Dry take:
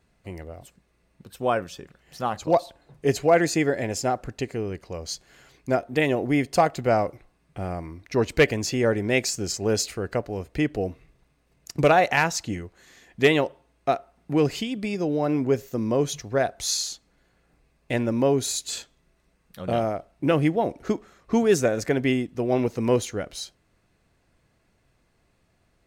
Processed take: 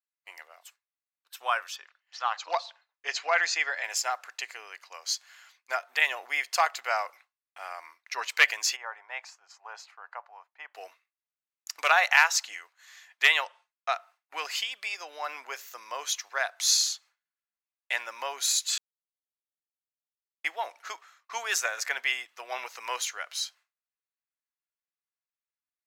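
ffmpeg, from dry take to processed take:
-filter_complex "[0:a]asettb=1/sr,asplit=3[a][b][c];[a]atrim=end=1.764[d];[b]atrim=start=1.76:end=3.84,asetpts=PTS-STARTPTS,afade=t=in:d=0.004:c=qsin,afade=t=out:st=2.076:d=0.004:c=qsin,lowpass=f=6k:w=0.5412,lowpass=f=6k:w=1.3066[e];[c]atrim=start=3.836[f];[d][e]acrossfade=d=0.004:c1=hsin:c2=qsin[g];[g][f]acrossfade=d=0.004:c1=qsin:c2=hsin,asplit=3[h][i][j];[h]afade=t=out:st=8.75:d=0.02[k];[i]bandpass=f=890:t=q:w=2.6,afade=t=in:st=8.75:d=0.02,afade=t=out:st=10.74:d=0.02[l];[j]afade=t=in:st=10.74:d=0.02[m];[k][l][m]amix=inputs=3:normalize=0,asettb=1/sr,asplit=3[n][o][p];[n]atrim=end=13.454[q];[o]atrim=start=13.45:end=13.95,asetpts=PTS-STARTPTS,afade=t=in:d=0.004:c=qsin,afade=t=out:st=0.496:d=0.004:c=qsin,lowpass=f=9.8k:w=0.5412,lowpass=f=9.8k:w=1.3066[r];[p]atrim=start=13.946[s];[q][r]acrossfade=d=0.004:c1=hsin:c2=qsin[t];[t][s]acrossfade=d=0.004:c1=qsin:c2=hsin,asplit=3[u][v][w];[u]atrim=end=18.78,asetpts=PTS-STARTPTS,afade=t=out:st=18.776:d=0.004:c=hsin[x];[v]atrim=start=18.78:end=20.44,asetpts=PTS-STARTPTS,volume=0[y];[w]atrim=start=20.44,asetpts=PTS-STARTPTS,afade=t=in:d=0.004:c=hsin[z];[x][y][z]concat=n=3:v=0:a=1,highpass=f=1k:w=0.5412,highpass=f=1k:w=1.3066,agate=range=-33dB:threshold=-51dB:ratio=3:detection=peak,equalizer=f=8.9k:w=4.8:g=-7.5,volume=3.5dB"

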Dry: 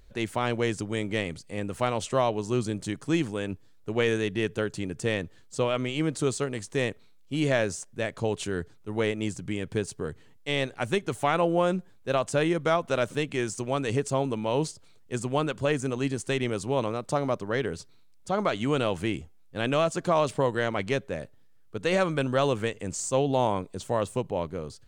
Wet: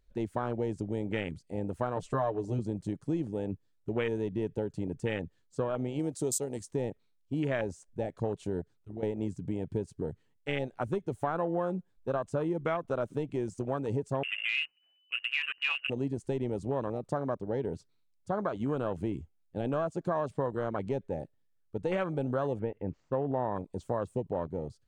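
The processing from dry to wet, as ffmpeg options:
-filter_complex "[0:a]asettb=1/sr,asplit=3[a][b][c];[a]atrim=end=1.964[d];[b]atrim=start=1.96:end=2.59,asetpts=PTS-STARTPTS,afade=t=in:d=0.004:c=qsin,afade=t=out:st=0.626:d=0.004:c=qsin,aecho=1:1:6.7:0.82,atrim=end_sample=27783[e];[c]atrim=start=2.586[f];[d][e]acrossfade=d=0.004:c1=hsin:c2=qsin[g];[g][f]acrossfade=d=0.004:c1=qsin:c2=hsin,asettb=1/sr,asplit=3[h][i][j];[h]atrim=end=5.994[k];[i]atrim=start=5.99:end=6.71,asetpts=PTS-STARTPTS,afade=t=in:d=0.004:c=qsin,afade=t=out:st=0.716:d=0.004:c=qsin,bass=f=250:g=-5,treble=f=4k:g=12[l];[j]atrim=start=6.706[m];[k][l]acrossfade=d=0.004:c1=hsin:c2=qsin[n];[n][m]acrossfade=d=0.004:c1=qsin:c2=hsin,asettb=1/sr,asplit=3[o][p][q];[o]atrim=end=8.614[r];[p]atrim=start=8.61:end=9.03,asetpts=PTS-STARTPTS,afade=t=in:d=0.004:c=qsin,afade=t=out:st=0.416:d=0.004:c=qsin,acompressor=threshold=-38dB:ratio=3:attack=3.2:release=140:knee=1:detection=peak[s];[q]atrim=start=9.026[t];[r][s]acrossfade=d=0.004:c1=hsin:c2=qsin[u];[u][t]acrossfade=d=0.004:c1=qsin:c2=hsin,asettb=1/sr,asplit=3[v][w][x];[v]atrim=end=14.234[y];[w]atrim=start=14.23:end=15.9,asetpts=PTS-STARTPTS,afade=t=in:d=0.004:c=qsin,afade=t=out:st=1.666:d=0.004:c=qsin,lowpass=f=2.6k:t=q:w=0.5098,lowpass=f=2.6k:t=q:w=0.6013,lowpass=f=2.6k:t=q:w=0.9,lowpass=f=2.6k:t=q:w=2.563,afreqshift=-3000[z];[x]atrim=start=15.896[aa];[y][z]acrossfade=d=0.004:c1=hsin:c2=qsin[ab];[ab][aa]acrossfade=d=0.004:c1=qsin:c2=hsin,asettb=1/sr,asplit=3[ac][ad][ae];[ac]atrim=end=22.594[af];[ad]atrim=start=22.59:end=23.55,asetpts=PTS-STARTPTS,afade=t=in:d=0.004:c=qsin,afade=t=out:st=0.956:d=0.004:c=qsin,lowpass=f=2.6k:w=0.5412,lowpass=f=2.6k:w=1.3066[ag];[ae]atrim=start=23.546[ah];[af][ag]acrossfade=d=0.004:c1=hsin:c2=qsin[ai];[ai][ah]acrossfade=d=0.004:c1=qsin:c2=hsin,afwtdn=0.0355,acompressor=threshold=-29dB:ratio=3"

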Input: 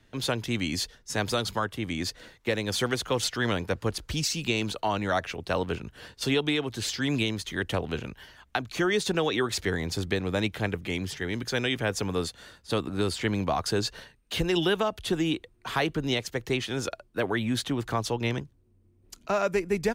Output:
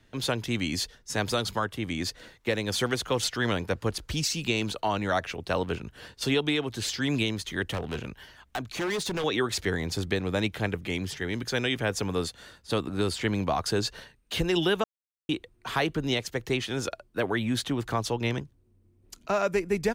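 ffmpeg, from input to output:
-filter_complex "[0:a]asettb=1/sr,asplit=3[a][b][c];[a]atrim=end=7.684[d];[b]atrim=start=7.68:end=9.24,asetpts=PTS-STARTPTS,afade=t=in:d=0.004:c=qsin,afade=t=out:st=1.556:d=0.004:c=qsin,asoftclip=type=hard:threshold=-27dB[e];[c]atrim=start=9.236[f];[d][e]acrossfade=d=0.004:c1=hsin:c2=qsin[g];[g][f]acrossfade=d=0.004:c1=qsin:c2=hsin,asplit=3[h][i][j];[h]atrim=end=14.84,asetpts=PTS-STARTPTS,afade=t=out:st=14.836:d=0.004:c=hsin[k];[i]atrim=start=14.84:end=15.29,asetpts=PTS-STARTPTS,volume=0[l];[j]atrim=start=15.29,asetpts=PTS-STARTPTS,afade=t=in:d=0.004:c=hsin[m];[k][l][m]concat=n=3:v=0:a=1"

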